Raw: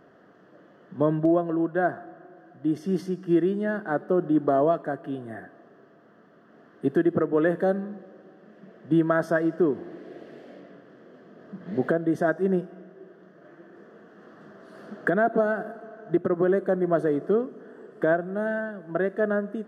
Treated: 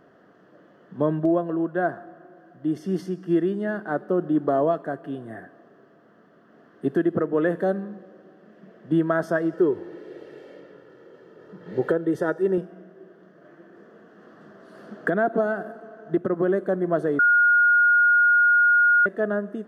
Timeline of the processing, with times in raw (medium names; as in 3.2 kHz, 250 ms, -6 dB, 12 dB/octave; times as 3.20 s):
9.53–12.58 s: comb 2.2 ms
17.19–19.06 s: bleep 1.43 kHz -14 dBFS